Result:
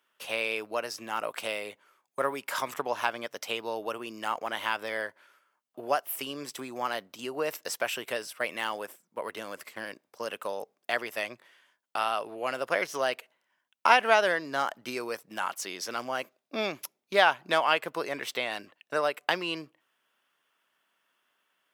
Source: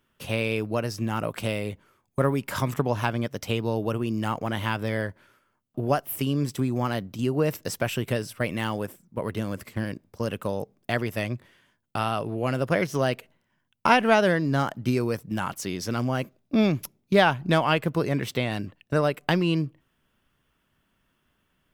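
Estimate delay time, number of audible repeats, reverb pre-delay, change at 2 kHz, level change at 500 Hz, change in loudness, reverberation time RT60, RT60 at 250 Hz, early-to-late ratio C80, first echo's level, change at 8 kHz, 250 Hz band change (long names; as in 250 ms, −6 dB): no echo audible, no echo audible, no reverb audible, 0.0 dB, −4.5 dB, −4.0 dB, no reverb audible, no reverb audible, no reverb audible, no echo audible, −1.0 dB, −15.0 dB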